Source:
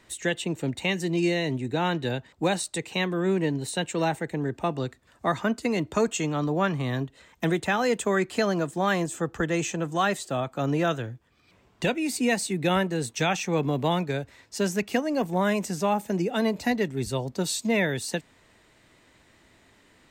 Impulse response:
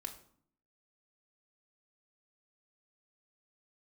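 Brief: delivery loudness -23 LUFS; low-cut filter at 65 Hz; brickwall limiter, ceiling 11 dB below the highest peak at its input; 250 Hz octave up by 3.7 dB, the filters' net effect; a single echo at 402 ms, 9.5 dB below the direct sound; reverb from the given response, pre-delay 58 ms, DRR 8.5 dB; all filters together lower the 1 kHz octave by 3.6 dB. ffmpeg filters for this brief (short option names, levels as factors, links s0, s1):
-filter_complex "[0:a]highpass=65,equalizer=f=250:t=o:g=5.5,equalizer=f=1000:t=o:g=-5.5,alimiter=limit=0.0794:level=0:latency=1,aecho=1:1:402:0.335,asplit=2[s0][s1];[1:a]atrim=start_sample=2205,adelay=58[s2];[s1][s2]afir=irnorm=-1:irlink=0,volume=0.501[s3];[s0][s3]amix=inputs=2:normalize=0,volume=2.11"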